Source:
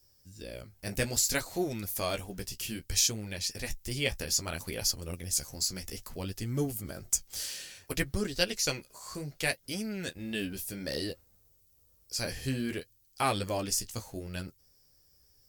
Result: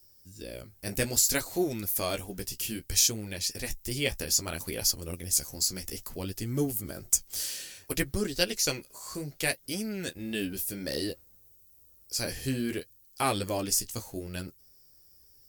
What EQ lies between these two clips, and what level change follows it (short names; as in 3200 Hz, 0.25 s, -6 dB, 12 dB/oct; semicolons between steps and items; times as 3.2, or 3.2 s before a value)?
bell 330 Hz +4 dB 0.96 oct; high shelf 8500 Hz +8.5 dB; 0.0 dB